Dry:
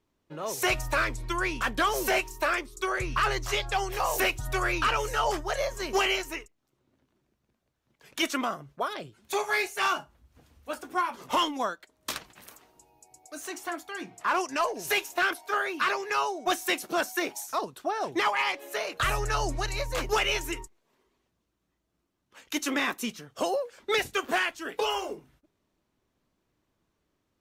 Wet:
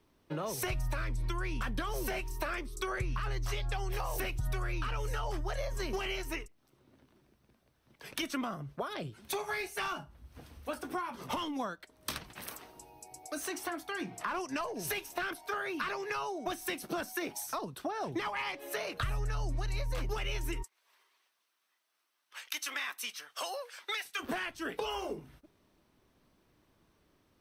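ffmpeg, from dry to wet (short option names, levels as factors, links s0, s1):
-filter_complex "[0:a]asplit=3[s0][s1][s2];[s0]afade=t=out:st=20.62:d=0.02[s3];[s1]highpass=1200,afade=t=in:st=20.62:d=0.02,afade=t=out:st=24.19:d=0.02[s4];[s2]afade=t=in:st=24.19:d=0.02[s5];[s3][s4][s5]amix=inputs=3:normalize=0,acrossover=split=200[s6][s7];[s7]acompressor=threshold=0.00631:ratio=3[s8];[s6][s8]amix=inputs=2:normalize=0,bandreject=f=7000:w=5.7,acompressor=threshold=0.0126:ratio=6,volume=2.24"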